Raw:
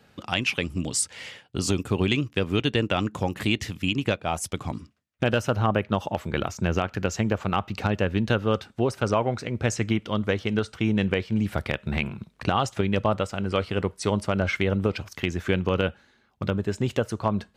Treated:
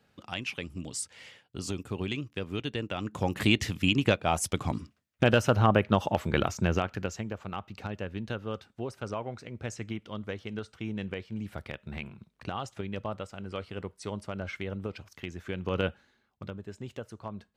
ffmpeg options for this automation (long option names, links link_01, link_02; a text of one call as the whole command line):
ffmpeg -i in.wav -af "volume=8.5dB,afade=type=in:start_time=3:duration=0.42:silence=0.298538,afade=type=out:start_time=6.41:duration=0.84:silence=0.237137,afade=type=in:start_time=15.56:duration=0.28:silence=0.398107,afade=type=out:start_time=15.84:duration=0.7:silence=0.281838" out.wav